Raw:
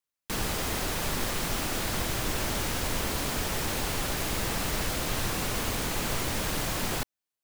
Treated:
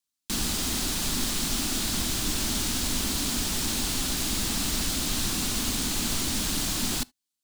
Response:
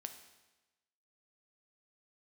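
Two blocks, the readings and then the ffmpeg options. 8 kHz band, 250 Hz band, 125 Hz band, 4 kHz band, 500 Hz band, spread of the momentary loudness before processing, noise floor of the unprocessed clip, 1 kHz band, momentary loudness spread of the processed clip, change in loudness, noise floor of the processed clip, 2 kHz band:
+6.5 dB, +4.0 dB, −1.0 dB, +5.5 dB, −5.5 dB, 0 LU, below −85 dBFS, −4.0 dB, 0 LU, +3.0 dB, −85 dBFS, −2.0 dB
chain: -filter_complex "[0:a]equalizer=frequency=125:width_type=o:width=1:gain=-6,equalizer=frequency=250:width_type=o:width=1:gain=8,equalizer=frequency=500:width_type=o:width=1:gain=-11,equalizer=frequency=1000:width_type=o:width=1:gain=-3,equalizer=frequency=2000:width_type=o:width=1:gain=-5,equalizer=frequency=4000:width_type=o:width=1:gain=5,equalizer=frequency=8000:width_type=o:width=1:gain=5,asplit=2[link_01][link_02];[1:a]atrim=start_sample=2205,afade=type=out:start_time=0.13:duration=0.01,atrim=end_sample=6174[link_03];[link_02][link_03]afir=irnorm=-1:irlink=0,volume=-10dB[link_04];[link_01][link_04]amix=inputs=2:normalize=0"

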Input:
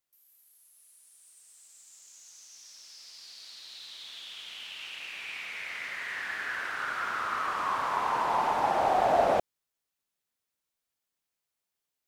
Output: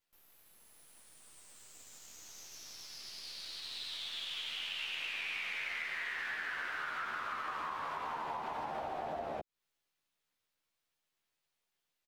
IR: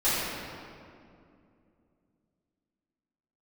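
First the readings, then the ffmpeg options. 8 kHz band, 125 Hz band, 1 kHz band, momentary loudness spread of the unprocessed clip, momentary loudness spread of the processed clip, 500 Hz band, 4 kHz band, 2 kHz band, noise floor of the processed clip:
−3.5 dB, −9.5 dB, −12.0 dB, 22 LU, 18 LU, −14.5 dB, +0.5 dB, −4.0 dB, below −85 dBFS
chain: -filter_complex "[0:a]acrossover=split=360[link_01][link_02];[link_02]acompressor=threshold=-28dB:ratio=6[link_03];[link_01][link_03]amix=inputs=2:normalize=0,asplit=2[link_04][link_05];[link_05]adelay=13,volume=-3.5dB[link_06];[link_04][link_06]amix=inputs=2:normalize=0,acrossover=split=340|780|4400[link_07][link_08][link_09][link_10];[link_10]aeval=exprs='max(val(0),0)':channel_layout=same[link_11];[link_07][link_08][link_09][link_11]amix=inputs=4:normalize=0,acompressor=threshold=-38dB:ratio=6,equalizer=frequency=3400:width_type=o:width=1.9:gain=3"

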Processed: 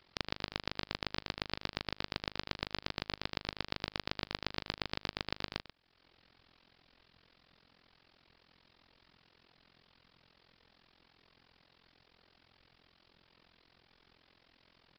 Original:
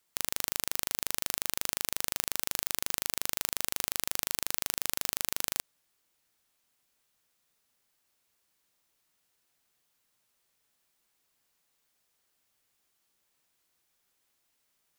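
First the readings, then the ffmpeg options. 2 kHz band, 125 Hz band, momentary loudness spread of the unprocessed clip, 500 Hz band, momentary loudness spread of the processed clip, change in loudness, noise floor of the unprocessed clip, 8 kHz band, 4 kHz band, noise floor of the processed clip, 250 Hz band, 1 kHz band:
−2.0 dB, +5.5 dB, 0 LU, +1.0 dB, 1 LU, −8.5 dB, −76 dBFS, −28.5 dB, −2.5 dB, −71 dBFS, +3.5 dB, −1.0 dB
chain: -af "aecho=1:1:97:0.119,aresample=11025,aresample=44100,acompressor=threshold=-60dB:ratio=2,lowshelf=frequency=370:gain=8.5,tremolo=f=43:d=0.947,volume=17dB"

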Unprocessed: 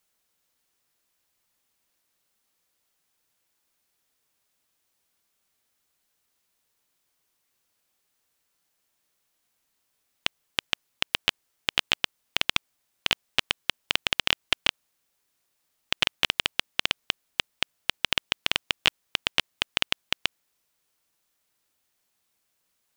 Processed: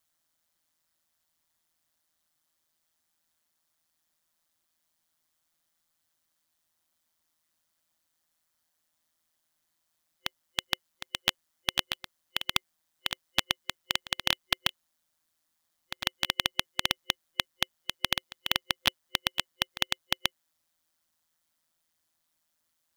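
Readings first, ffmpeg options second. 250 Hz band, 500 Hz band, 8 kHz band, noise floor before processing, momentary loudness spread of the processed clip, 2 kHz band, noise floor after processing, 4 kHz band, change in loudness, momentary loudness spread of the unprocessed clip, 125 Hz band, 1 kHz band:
−1.5 dB, −3.5 dB, −0.5 dB, −76 dBFS, 7 LU, −5.0 dB, −79 dBFS, −3.0 dB, −3.5 dB, 8 LU, −1.5 dB, −2.0 dB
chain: -af "aeval=exprs='val(0)*sin(2*PI*81*n/s)':channel_layout=same,acrusher=bits=3:mode=log:mix=0:aa=0.000001,superequalizer=7b=0.355:12b=0.631"

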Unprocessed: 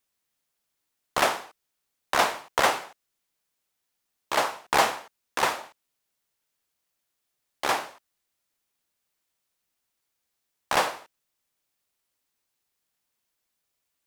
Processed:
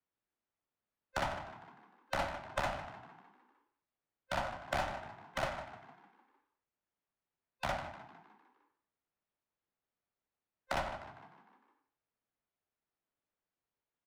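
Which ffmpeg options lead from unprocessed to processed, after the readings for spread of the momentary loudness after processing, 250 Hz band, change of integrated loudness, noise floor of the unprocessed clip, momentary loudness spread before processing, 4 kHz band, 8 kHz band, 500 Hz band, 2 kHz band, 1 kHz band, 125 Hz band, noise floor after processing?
17 LU, −8.5 dB, −13.0 dB, −80 dBFS, 13 LU, −15.0 dB, −19.5 dB, −10.5 dB, −12.5 dB, −12.5 dB, +1.0 dB, below −85 dBFS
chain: -filter_complex "[0:a]afftfilt=real='real(if(between(b,1,1008),(2*floor((b-1)/24)+1)*24-b,b),0)':imag='imag(if(between(b,1,1008),(2*floor((b-1)/24)+1)*24-b,b),0)*if(between(b,1,1008),-1,1)':win_size=2048:overlap=0.75,acrossover=split=81|410|820[link_01][link_02][link_03][link_04];[link_01]acompressor=threshold=-40dB:ratio=4[link_05];[link_02]acompressor=threshold=-39dB:ratio=4[link_06];[link_03]acompressor=threshold=-34dB:ratio=4[link_07];[link_04]acompressor=threshold=-34dB:ratio=4[link_08];[link_05][link_06][link_07][link_08]amix=inputs=4:normalize=0,asplit=2[link_09][link_10];[link_10]asplit=6[link_11][link_12][link_13][link_14][link_15][link_16];[link_11]adelay=152,afreqshift=42,volume=-11.5dB[link_17];[link_12]adelay=304,afreqshift=84,volume=-16.7dB[link_18];[link_13]adelay=456,afreqshift=126,volume=-21.9dB[link_19];[link_14]adelay=608,afreqshift=168,volume=-27.1dB[link_20];[link_15]adelay=760,afreqshift=210,volume=-32.3dB[link_21];[link_16]adelay=912,afreqshift=252,volume=-37.5dB[link_22];[link_17][link_18][link_19][link_20][link_21][link_22]amix=inputs=6:normalize=0[link_23];[link_09][link_23]amix=inputs=2:normalize=0,adynamicsmooth=sensitivity=7.5:basefreq=1900,volume=-4.5dB"

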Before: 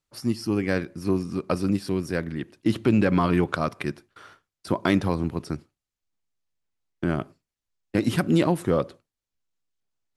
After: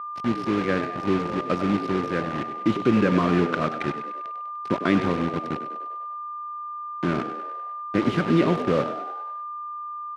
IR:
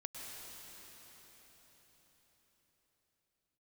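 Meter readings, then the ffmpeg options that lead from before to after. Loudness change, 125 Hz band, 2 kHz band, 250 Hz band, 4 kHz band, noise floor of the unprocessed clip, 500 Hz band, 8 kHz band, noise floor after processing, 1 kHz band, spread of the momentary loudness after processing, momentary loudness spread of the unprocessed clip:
0.0 dB, −1.5 dB, +2.0 dB, +1.0 dB, +0.5 dB, below −85 dBFS, +1.5 dB, can't be measured, −34 dBFS, +6.5 dB, 13 LU, 12 LU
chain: -filter_complex "[0:a]equalizer=frequency=810:width_type=o:width=0.44:gain=-9,aeval=exprs='val(0)+0.0141*(sin(2*PI*50*n/s)+sin(2*PI*2*50*n/s)/2+sin(2*PI*3*50*n/s)/3+sin(2*PI*4*50*n/s)/4+sin(2*PI*5*50*n/s)/5)':channel_layout=same,acrusher=bits=4:mix=0:aa=0.000001,asplit=7[link_01][link_02][link_03][link_04][link_05][link_06][link_07];[link_02]adelay=99,afreqshift=75,volume=-11dB[link_08];[link_03]adelay=198,afreqshift=150,volume=-15.9dB[link_09];[link_04]adelay=297,afreqshift=225,volume=-20.8dB[link_10];[link_05]adelay=396,afreqshift=300,volume=-25.6dB[link_11];[link_06]adelay=495,afreqshift=375,volume=-30.5dB[link_12];[link_07]adelay=594,afreqshift=450,volume=-35.4dB[link_13];[link_01][link_08][link_09][link_10][link_11][link_12][link_13]amix=inputs=7:normalize=0,asplit=2[link_14][link_15];[1:a]atrim=start_sample=2205,atrim=end_sample=6174[link_16];[link_15][link_16]afir=irnorm=-1:irlink=0,volume=-11.5dB[link_17];[link_14][link_17]amix=inputs=2:normalize=0,aeval=exprs='val(0)+0.0282*sin(2*PI*1200*n/s)':channel_layout=same,highpass=140,lowpass=2800"

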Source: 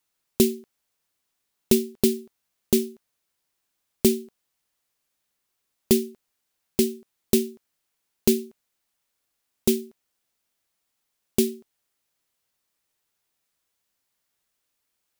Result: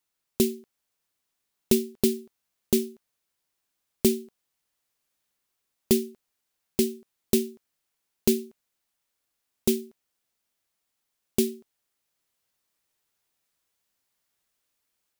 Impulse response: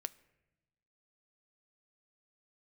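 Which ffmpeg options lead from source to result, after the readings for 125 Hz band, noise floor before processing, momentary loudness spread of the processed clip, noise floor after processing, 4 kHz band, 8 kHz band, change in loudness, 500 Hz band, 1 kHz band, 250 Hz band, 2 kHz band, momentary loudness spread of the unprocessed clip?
−2.5 dB, −78 dBFS, 13 LU, −81 dBFS, −2.5 dB, −2.5 dB, −2.5 dB, −2.5 dB, −2.5 dB, −2.5 dB, −2.5 dB, 13 LU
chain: -af "dynaudnorm=framelen=520:gausssize=3:maxgain=3.5dB,volume=-4dB"

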